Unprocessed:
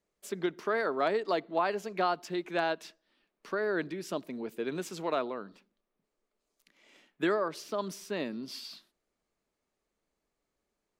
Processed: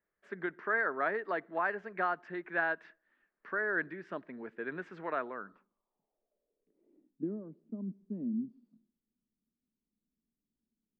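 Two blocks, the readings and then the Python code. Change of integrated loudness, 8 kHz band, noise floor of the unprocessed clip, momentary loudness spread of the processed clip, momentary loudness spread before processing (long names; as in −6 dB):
−3.0 dB, below −30 dB, −85 dBFS, 12 LU, 12 LU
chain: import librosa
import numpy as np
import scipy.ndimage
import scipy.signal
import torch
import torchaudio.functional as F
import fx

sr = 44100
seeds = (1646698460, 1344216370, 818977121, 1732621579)

y = fx.filter_sweep_lowpass(x, sr, from_hz=1700.0, to_hz=230.0, start_s=5.3, end_s=7.31, q=4.7)
y = F.gain(torch.from_numpy(y), -7.0).numpy()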